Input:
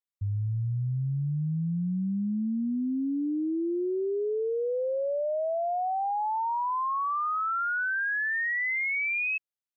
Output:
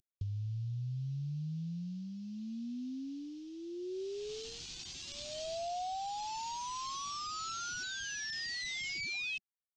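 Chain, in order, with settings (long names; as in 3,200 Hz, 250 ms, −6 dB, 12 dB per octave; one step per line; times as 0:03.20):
variable-slope delta modulation 32 kbit/s
elliptic band-stop filter 360–740 Hz, stop band 60 dB
flat-topped bell 1,300 Hz −16 dB
brickwall limiter −31 dBFS, peak gain reduction 5.5 dB
downward compressor 5 to 1, threshold −48 dBFS, peak gain reduction 13 dB
thirty-one-band graphic EQ 200 Hz −6 dB, 315 Hz −10 dB, 500 Hz +8 dB
level +10 dB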